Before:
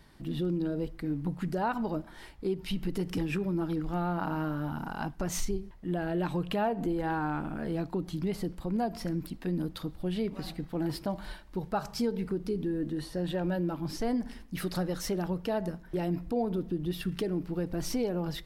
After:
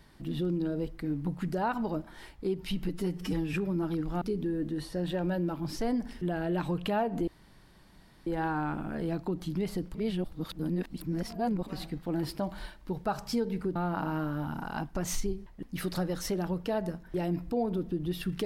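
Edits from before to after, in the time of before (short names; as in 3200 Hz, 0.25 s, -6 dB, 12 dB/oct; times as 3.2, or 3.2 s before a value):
2.89–3.32 stretch 1.5×
4–5.87 swap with 12.42–14.42
6.93 insert room tone 0.99 s
8.61–10.33 reverse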